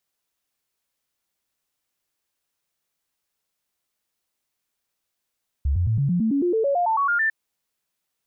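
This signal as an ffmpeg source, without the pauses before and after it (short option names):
-f lavfi -i "aevalsrc='0.126*clip(min(mod(t,0.11),0.11-mod(t,0.11))/0.005,0,1)*sin(2*PI*70*pow(2,floor(t/0.11)/3)*mod(t,0.11))':d=1.65:s=44100"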